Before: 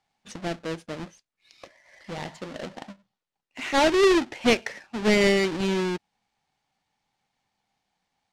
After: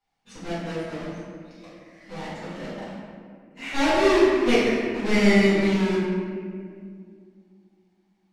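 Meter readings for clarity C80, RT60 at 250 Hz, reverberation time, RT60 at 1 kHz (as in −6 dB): −0.5 dB, 3.4 s, 2.2 s, 1.8 s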